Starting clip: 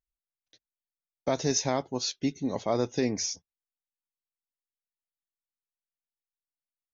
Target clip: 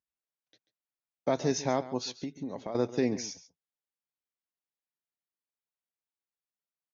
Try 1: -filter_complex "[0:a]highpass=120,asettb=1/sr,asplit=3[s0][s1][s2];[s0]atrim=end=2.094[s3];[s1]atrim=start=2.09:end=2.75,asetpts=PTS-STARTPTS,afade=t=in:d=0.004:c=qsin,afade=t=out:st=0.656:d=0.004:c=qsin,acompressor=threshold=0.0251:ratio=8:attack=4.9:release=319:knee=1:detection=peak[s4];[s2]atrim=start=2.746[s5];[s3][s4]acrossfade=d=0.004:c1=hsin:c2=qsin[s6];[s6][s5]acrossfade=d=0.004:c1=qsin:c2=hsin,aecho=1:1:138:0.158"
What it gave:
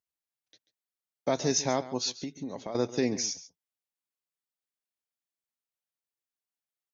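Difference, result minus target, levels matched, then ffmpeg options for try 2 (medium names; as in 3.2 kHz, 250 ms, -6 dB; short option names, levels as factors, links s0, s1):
8 kHz band +6.5 dB
-filter_complex "[0:a]highpass=120,highshelf=f=4300:g=-12,asettb=1/sr,asplit=3[s0][s1][s2];[s0]atrim=end=2.094[s3];[s1]atrim=start=2.09:end=2.75,asetpts=PTS-STARTPTS,afade=t=in:d=0.004:c=qsin,afade=t=out:st=0.656:d=0.004:c=qsin,acompressor=threshold=0.0251:ratio=8:attack=4.9:release=319:knee=1:detection=peak[s4];[s2]atrim=start=2.746[s5];[s3][s4]acrossfade=d=0.004:c1=hsin:c2=qsin[s6];[s6][s5]acrossfade=d=0.004:c1=qsin:c2=hsin,aecho=1:1:138:0.158"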